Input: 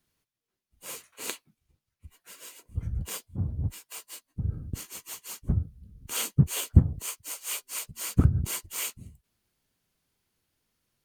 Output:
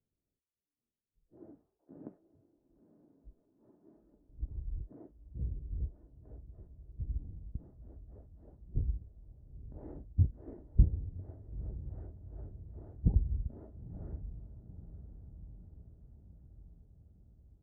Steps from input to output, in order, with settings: ladder low-pass 840 Hz, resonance 35%; wide varispeed 0.627×; diffused feedback echo 0.937 s, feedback 60%, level -13 dB

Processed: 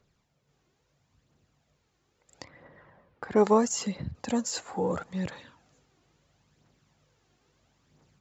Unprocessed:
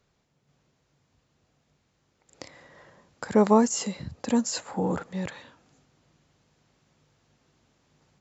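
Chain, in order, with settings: 2.44–4.15 low-pass opened by the level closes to 2000 Hz, open at -18 dBFS; phaser 0.75 Hz, delay 2.9 ms, feedback 43%; gain -2.5 dB

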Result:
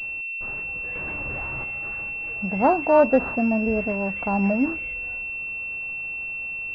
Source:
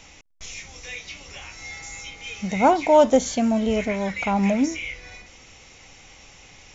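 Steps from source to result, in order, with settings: 0.95–1.64 sample leveller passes 3; pulse-width modulation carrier 2700 Hz; gain -1 dB

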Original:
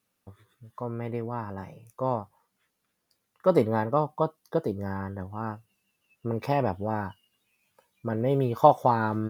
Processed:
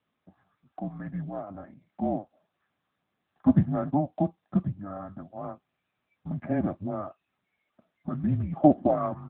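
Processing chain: comb 2 ms, depth 96%; mistuned SSB -300 Hz 280–2300 Hz; gain -3 dB; AMR-NB 10.2 kbps 8000 Hz

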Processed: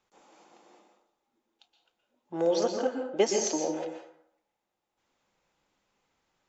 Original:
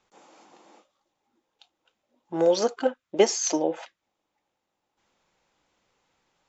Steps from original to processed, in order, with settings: plate-style reverb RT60 0.7 s, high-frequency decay 0.6×, pre-delay 0.11 s, DRR 3.5 dB; gain -5.5 dB

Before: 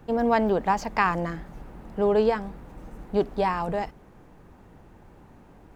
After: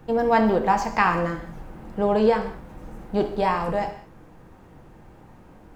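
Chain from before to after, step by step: non-linear reverb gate 0.23 s falling, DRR 4 dB; gain +1.5 dB

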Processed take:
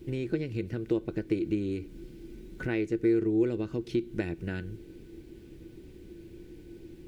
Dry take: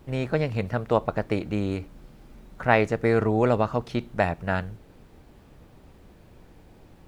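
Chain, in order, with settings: band shelf 970 Hz -14 dB; compressor 5:1, threshold -32 dBFS, peak gain reduction 12.5 dB; small resonant body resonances 340/1500 Hz, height 17 dB, ringing for 90 ms

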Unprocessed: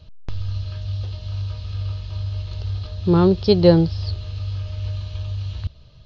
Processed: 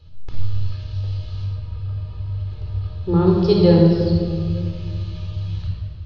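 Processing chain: 1.44–3.26 LPF 1000 Hz -> 2000 Hz 6 dB/oct; shoebox room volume 3300 m³, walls mixed, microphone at 4.1 m; gain -6.5 dB

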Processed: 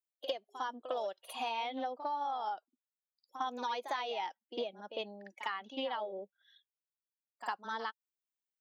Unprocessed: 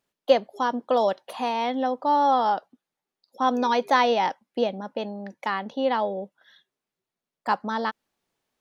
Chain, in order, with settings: per-bin expansion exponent 1.5; HPF 470 Hz 12 dB/oct; bell 3000 Hz +6.5 dB 0.58 oct; compressor 12:1, threshold -35 dBFS, peak gain reduction 21 dB; on a send: reverse echo 53 ms -10.5 dB; on the sum: Doppler distortion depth 0.11 ms; gain +1 dB

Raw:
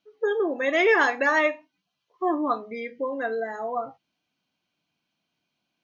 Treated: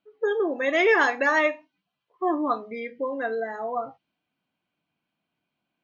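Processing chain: low-pass opened by the level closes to 2500 Hz, open at -18.5 dBFS

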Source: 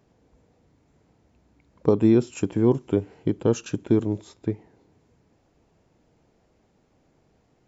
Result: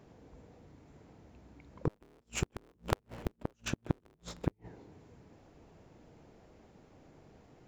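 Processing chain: 1.89–4.53 cycle switcher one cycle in 3, inverted; high shelf 4000 Hz -5.5 dB; de-hum 57.55 Hz, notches 4; compressor 6:1, threshold -25 dBFS, peak gain reduction 11.5 dB; soft clip -15 dBFS, distortion -22 dB; flipped gate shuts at -23 dBFS, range -40 dB; gain +5.5 dB

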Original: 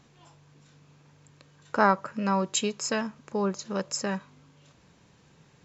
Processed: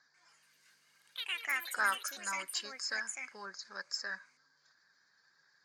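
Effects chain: bin magnitudes rounded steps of 15 dB; double band-pass 2800 Hz, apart 1.5 oct; in parallel at -10 dB: hard clip -33.5 dBFS, distortion -9 dB; on the sum: echoes that change speed 0.142 s, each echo +5 st, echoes 3; gain +1 dB

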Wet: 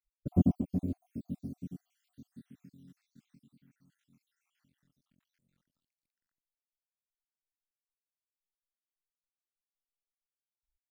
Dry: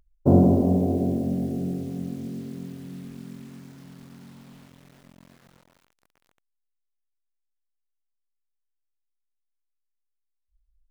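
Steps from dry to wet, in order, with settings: random spectral dropouts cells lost 67%; band shelf 620 Hz -11 dB; upward expander 1.5:1, over -48 dBFS; gain -3.5 dB

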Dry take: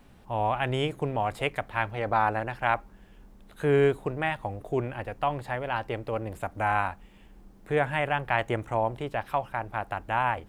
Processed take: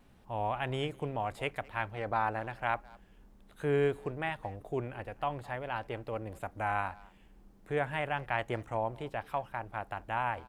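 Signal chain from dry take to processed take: wow and flutter 28 cents; speakerphone echo 0.21 s, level -22 dB; gain -6.5 dB

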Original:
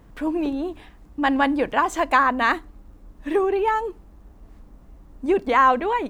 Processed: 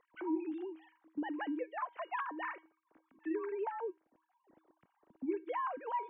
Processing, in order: sine-wave speech; compressor 2.5:1, threshold -37 dBFS, peak gain reduction 15.5 dB; resonator 320 Hz, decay 0.34 s, harmonics odd, mix 70%; gain +4 dB

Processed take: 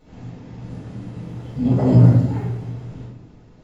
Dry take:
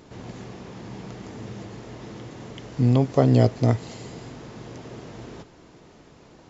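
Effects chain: tone controls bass +9 dB, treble -2 dB; plain phase-vocoder stretch 0.56×; echoes that change speed 0.601 s, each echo +7 st, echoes 3, each echo -6 dB; shoebox room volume 230 m³, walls mixed, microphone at 5.3 m; gain -15.5 dB

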